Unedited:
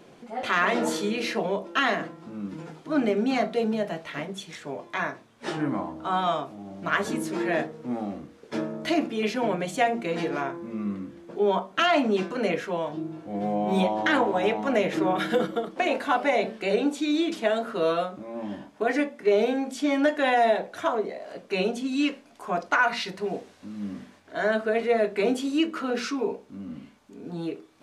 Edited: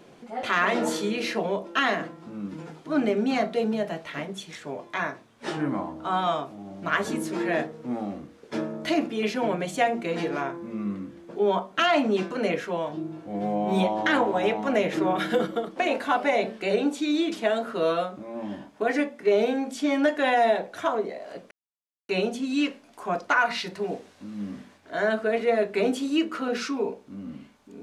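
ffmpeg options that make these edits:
-filter_complex "[0:a]asplit=2[s0][s1];[s0]atrim=end=21.51,asetpts=PTS-STARTPTS,afade=t=out:st=21.506:d=0.004:c=hsin,apad=pad_dur=0.58[s2];[s1]atrim=start=21.51,asetpts=PTS-STARTPTS,afade=t=in:d=0.004:c=hsin[s3];[s2][s3]concat=n=2:v=0:a=1"

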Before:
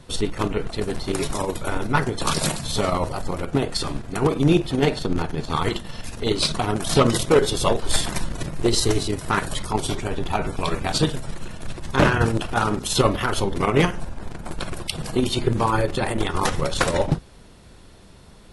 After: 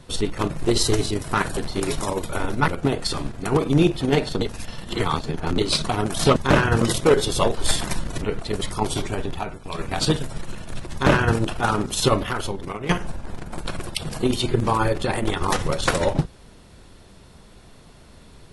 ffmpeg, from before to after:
-filter_complex "[0:a]asplit=13[s0][s1][s2][s3][s4][s5][s6][s7][s8][s9][s10][s11][s12];[s0]atrim=end=0.502[s13];[s1]atrim=start=8.468:end=9.542[s14];[s2]atrim=start=0.888:end=2.002[s15];[s3]atrim=start=3.378:end=5.112[s16];[s4]atrim=start=5.108:end=6.282,asetpts=PTS-STARTPTS,areverse[s17];[s5]atrim=start=6.278:end=7.062[s18];[s6]atrim=start=11.848:end=12.302[s19];[s7]atrim=start=7.058:end=8.472[s20];[s8]atrim=start=0.498:end=0.892[s21];[s9]atrim=start=9.538:end=10.52,asetpts=PTS-STARTPTS,afade=t=out:st=0.572:d=0.41:silence=0.223872[s22];[s10]atrim=start=10.52:end=10.53,asetpts=PTS-STARTPTS,volume=0.224[s23];[s11]atrim=start=10.53:end=13.82,asetpts=PTS-STARTPTS,afade=t=in:d=0.41:silence=0.223872,afade=t=out:st=2.44:d=0.85:silence=0.16788[s24];[s12]atrim=start=13.82,asetpts=PTS-STARTPTS,afade=t=in:d=0.004:c=hsin:silence=0.16788[s25];[s13][s14]acrossfade=d=0.004:c1=hsin:c2=hsin[s26];[s26][s15]acrossfade=d=0.004:c1=hsin:c2=hsin[s27];[s27][s16]acrossfade=d=0.004:c1=hsin:c2=hsin[s28];[s28][s17]acrossfade=d=0.004:c1=hsin:c2=hsin[s29];[s29][s18]acrossfade=d=0.004:c1=hsin:c2=hsin[s30];[s30][s19]acrossfade=d=0.004:c1=hsin:c2=hsin[s31];[s31][s20]acrossfade=d=0.004:c1=hsin:c2=hsin[s32];[s32][s21]acrossfade=d=0.004:c1=hsin:c2=hsin[s33];[s22][s23][s24][s25]concat=n=4:v=0:a=1[s34];[s33][s34]acrossfade=d=0.004:c1=hsin:c2=hsin"

